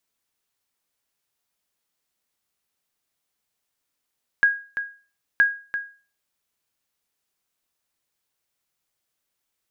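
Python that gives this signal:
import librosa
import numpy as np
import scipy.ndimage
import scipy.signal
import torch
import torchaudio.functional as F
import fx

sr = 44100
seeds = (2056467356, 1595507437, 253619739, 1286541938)

y = fx.sonar_ping(sr, hz=1640.0, decay_s=0.37, every_s=0.97, pings=2, echo_s=0.34, echo_db=-10.5, level_db=-9.5)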